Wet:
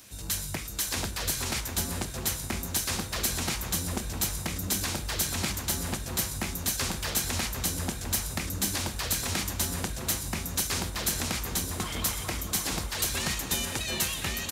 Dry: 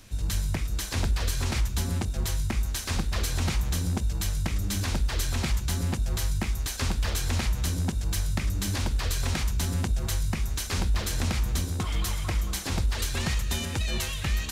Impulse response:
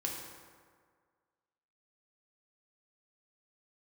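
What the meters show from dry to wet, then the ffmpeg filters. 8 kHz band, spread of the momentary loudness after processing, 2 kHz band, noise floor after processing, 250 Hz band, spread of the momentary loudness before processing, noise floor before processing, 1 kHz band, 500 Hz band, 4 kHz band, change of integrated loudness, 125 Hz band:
+5.0 dB, 3 LU, +1.0 dB, -37 dBFS, -1.5 dB, 2 LU, -33 dBFS, +1.0 dB, +0.5 dB, +2.0 dB, -0.5 dB, -7.5 dB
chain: -filter_complex "[0:a]highpass=f=250:p=1,highshelf=f=8100:g=11,asplit=2[s0][s1];[s1]adelay=750,lowpass=f=1200:p=1,volume=0.668,asplit=2[s2][s3];[s3]adelay=750,lowpass=f=1200:p=1,volume=0.51,asplit=2[s4][s5];[s5]adelay=750,lowpass=f=1200:p=1,volume=0.51,asplit=2[s6][s7];[s7]adelay=750,lowpass=f=1200:p=1,volume=0.51,asplit=2[s8][s9];[s9]adelay=750,lowpass=f=1200:p=1,volume=0.51,asplit=2[s10][s11];[s11]adelay=750,lowpass=f=1200:p=1,volume=0.51,asplit=2[s12][s13];[s13]adelay=750,lowpass=f=1200:p=1,volume=0.51[s14];[s2][s4][s6][s8][s10][s12][s14]amix=inputs=7:normalize=0[s15];[s0][s15]amix=inputs=2:normalize=0"

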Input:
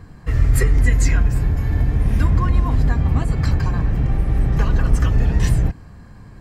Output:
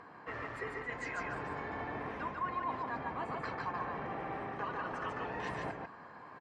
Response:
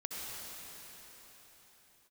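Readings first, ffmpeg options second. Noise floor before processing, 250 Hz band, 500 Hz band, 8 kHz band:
-42 dBFS, -19.5 dB, -9.5 dB, under -25 dB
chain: -filter_complex "[0:a]highpass=480,lowpass=2400,areverse,acompressor=threshold=0.0126:ratio=6,areverse,equalizer=f=1000:w=2:g=6,asplit=2[s0][s1];[s1]aecho=0:1:145:0.708[s2];[s0][s2]amix=inputs=2:normalize=0,acompressor=mode=upward:threshold=0.00141:ratio=2.5,volume=0.841" -ar 44100 -c:a libmp3lame -b:a 56k

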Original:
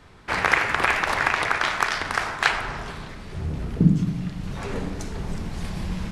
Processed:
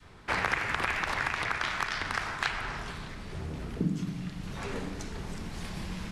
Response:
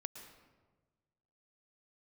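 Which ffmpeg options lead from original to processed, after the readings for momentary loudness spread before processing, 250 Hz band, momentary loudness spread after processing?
13 LU, -9.5 dB, 11 LU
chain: -filter_complex "[0:a]acrossover=split=230|6000[s0][s1][s2];[s0]acompressor=threshold=0.0178:ratio=4[s3];[s1]acompressor=threshold=0.0708:ratio=4[s4];[s2]acompressor=threshold=0.00355:ratio=4[s5];[s3][s4][s5]amix=inputs=3:normalize=0,adynamicequalizer=threshold=0.00708:dfrequency=580:dqfactor=0.7:tfrequency=580:tqfactor=0.7:attack=5:release=100:ratio=0.375:range=2.5:mode=cutabove:tftype=bell,volume=0.75"

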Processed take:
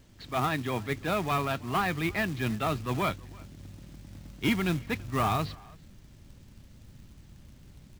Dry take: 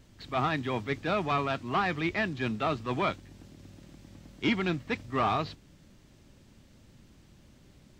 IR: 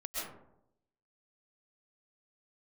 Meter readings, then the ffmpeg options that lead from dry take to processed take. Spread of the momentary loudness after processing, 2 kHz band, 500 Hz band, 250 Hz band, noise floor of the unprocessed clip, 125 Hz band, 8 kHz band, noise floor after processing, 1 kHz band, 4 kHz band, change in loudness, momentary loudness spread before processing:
20 LU, 0.0 dB, -0.5 dB, +1.0 dB, -58 dBFS, +3.5 dB, +10.0 dB, -54 dBFS, -0.5 dB, +0.5 dB, +0.5 dB, 4 LU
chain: -filter_complex "[0:a]asplit=2[s0][s1];[s1]adelay=330,highpass=300,lowpass=3400,asoftclip=type=hard:threshold=0.0473,volume=0.0794[s2];[s0][s2]amix=inputs=2:normalize=0,asubboost=boost=2:cutoff=210,acrusher=bits=4:mode=log:mix=0:aa=0.000001"

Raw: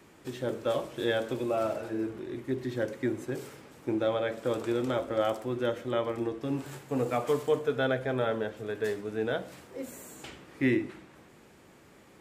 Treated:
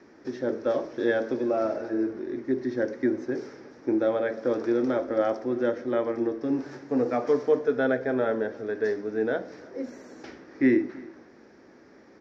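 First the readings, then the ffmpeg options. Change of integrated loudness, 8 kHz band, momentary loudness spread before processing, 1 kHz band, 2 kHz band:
+4.0 dB, no reading, 13 LU, +1.0 dB, +2.5 dB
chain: -filter_complex "[0:a]firequalizer=gain_entry='entry(160,0);entry(240,12);entry(1100,4);entry(1700,10);entry(2900,-5);entry(5600,10);entry(8200,-25);entry(13000,-27)':delay=0.05:min_phase=1,asplit=2[s0][s1];[s1]adelay=320.7,volume=0.0794,highshelf=f=4000:g=-7.22[s2];[s0][s2]amix=inputs=2:normalize=0,volume=0.531"

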